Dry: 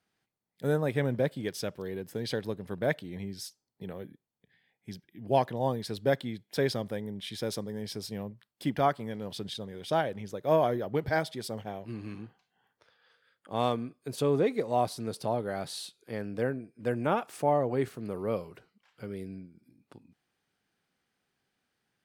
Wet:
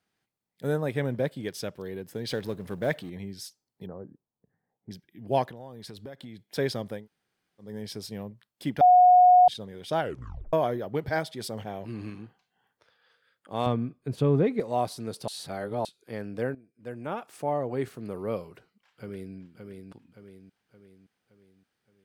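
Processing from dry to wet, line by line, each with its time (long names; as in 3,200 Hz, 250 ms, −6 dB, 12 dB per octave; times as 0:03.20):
0:02.27–0:03.10: mu-law and A-law mismatch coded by mu
0:03.86–0:04.91: Butterworth low-pass 1,300 Hz
0:05.45–0:06.50: downward compressor 10 to 1, threshold −38 dBFS
0:07.00–0:07.66: fill with room tone, crossfade 0.16 s
0:08.81–0:09.48: beep over 725 Hz −12.5 dBFS
0:10.00: tape stop 0.53 s
0:11.38–0:12.10: envelope flattener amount 50%
0:13.66–0:14.60: bass and treble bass +10 dB, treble −11 dB
0:15.28–0:15.85: reverse
0:16.55–0:17.98: fade in, from −15 dB
0:18.49–0:19.35: delay throw 570 ms, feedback 50%, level −5 dB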